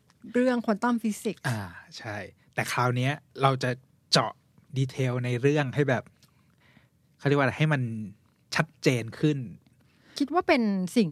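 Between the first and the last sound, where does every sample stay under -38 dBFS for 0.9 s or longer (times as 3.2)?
6.07–7.23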